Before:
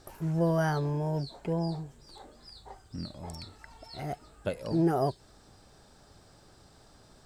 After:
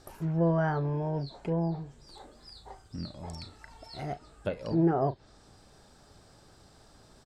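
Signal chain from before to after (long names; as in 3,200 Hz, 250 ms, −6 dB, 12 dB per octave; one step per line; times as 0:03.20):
double-tracking delay 36 ms −14 dB
treble cut that deepens with the level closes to 2,100 Hz, closed at −26 dBFS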